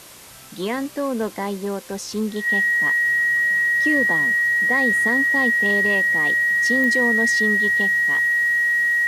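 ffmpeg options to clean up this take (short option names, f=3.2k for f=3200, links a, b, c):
-af "adeclick=t=4,bandreject=f=1.9k:w=30,afwtdn=0.0079"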